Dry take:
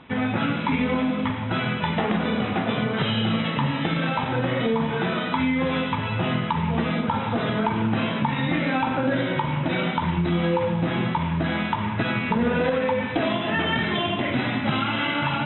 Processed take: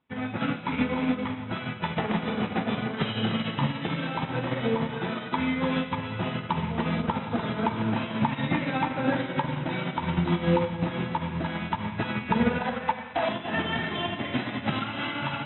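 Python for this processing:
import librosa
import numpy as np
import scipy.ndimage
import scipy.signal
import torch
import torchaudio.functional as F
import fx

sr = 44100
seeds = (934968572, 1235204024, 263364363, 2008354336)

p1 = fx.low_shelf_res(x, sr, hz=560.0, db=-7.5, q=3.0, at=(12.58, 13.29))
p2 = p1 + fx.echo_feedback(p1, sr, ms=297, feedback_pct=46, wet_db=-7.0, dry=0)
y = fx.upward_expand(p2, sr, threshold_db=-38.0, expansion=2.5)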